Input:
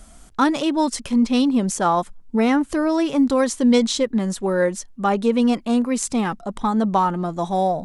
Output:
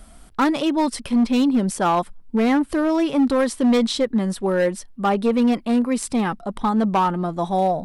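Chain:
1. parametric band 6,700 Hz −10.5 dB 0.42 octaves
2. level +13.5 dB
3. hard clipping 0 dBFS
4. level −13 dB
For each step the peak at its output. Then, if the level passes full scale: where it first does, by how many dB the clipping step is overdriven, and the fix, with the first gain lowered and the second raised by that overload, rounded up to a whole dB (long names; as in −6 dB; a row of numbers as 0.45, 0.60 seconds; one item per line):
−5.5, +8.0, 0.0, −13.0 dBFS
step 2, 8.0 dB
step 2 +5.5 dB, step 4 −5 dB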